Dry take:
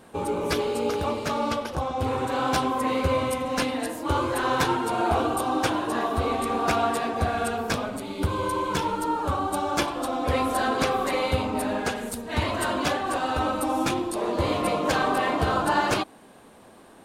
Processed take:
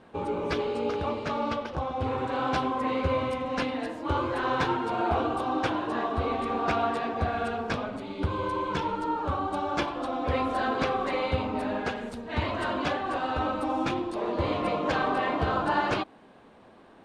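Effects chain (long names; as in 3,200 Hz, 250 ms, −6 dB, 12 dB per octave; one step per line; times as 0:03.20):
low-pass filter 3,700 Hz 12 dB per octave
level −3 dB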